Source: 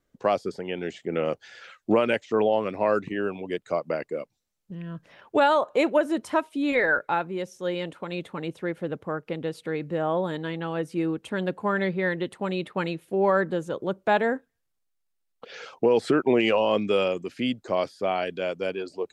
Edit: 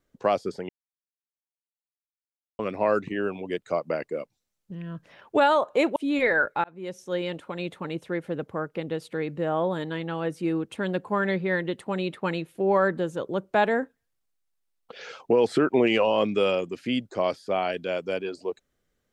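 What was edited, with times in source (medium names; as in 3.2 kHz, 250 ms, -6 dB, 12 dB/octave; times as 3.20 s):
0.69–2.59 s: mute
5.96–6.49 s: delete
7.17–7.53 s: fade in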